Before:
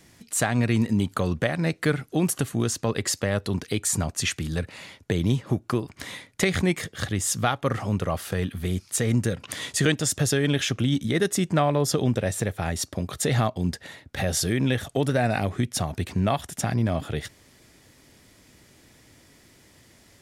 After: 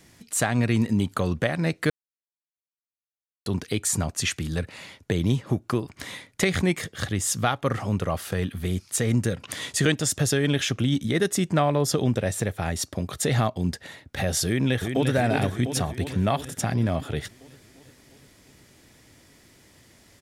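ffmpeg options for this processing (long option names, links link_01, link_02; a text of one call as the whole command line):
ffmpeg -i in.wav -filter_complex "[0:a]asplit=2[link_01][link_02];[link_02]afade=type=in:start_time=14.46:duration=0.01,afade=type=out:start_time=15.14:duration=0.01,aecho=0:1:350|700|1050|1400|1750|2100|2450|2800|3150|3500:0.530884|0.345075|0.224299|0.145794|0.0947662|0.061598|0.0400387|0.0260252|0.0169164|0.0109956[link_03];[link_01][link_03]amix=inputs=2:normalize=0,asplit=3[link_04][link_05][link_06];[link_04]atrim=end=1.9,asetpts=PTS-STARTPTS,afade=type=out:start_time=1.896:duration=0.004:curve=hsin[link_07];[link_05]atrim=start=1.9:end=3.46,asetpts=PTS-STARTPTS,volume=0[link_08];[link_06]atrim=start=3.46,asetpts=PTS-STARTPTS,afade=type=in:duration=0.004:curve=hsin[link_09];[link_07][link_08][link_09]concat=n=3:v=0:a=1" out.wav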